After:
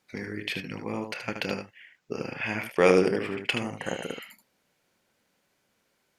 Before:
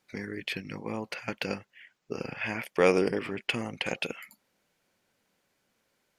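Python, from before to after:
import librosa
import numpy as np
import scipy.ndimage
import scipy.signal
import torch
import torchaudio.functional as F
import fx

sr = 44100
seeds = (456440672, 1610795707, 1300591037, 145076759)

y = fx.spec_repair(x, sr, seeds[0], start_s=3.82, length_s=0.39, low_hz=2000.0, high_hz=5900.0, source='before')
y = fx.cheby_harmonics(y, sr, harmonics=(7,), levels_db=(-38,), full_scale_db=-10.0)
y = fx.room_early_taps(y, sr, ms=(28, 76), db=(-14.5, -7.0))
y = y * librosa.db_to_amplitude(2.0)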